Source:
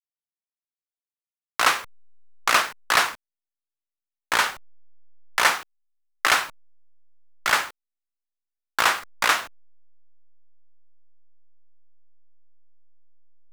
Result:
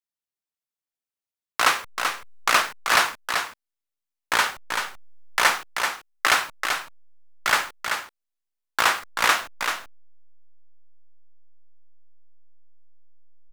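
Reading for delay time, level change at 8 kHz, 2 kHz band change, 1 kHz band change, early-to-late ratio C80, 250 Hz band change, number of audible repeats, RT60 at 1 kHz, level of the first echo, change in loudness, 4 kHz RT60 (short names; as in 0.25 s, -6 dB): 0.385 s, +1.0 dB, +1.0 dB, +1.0 dB, none, +1.0 dB, 1, none, -6.0 dB, -1.0 dB, none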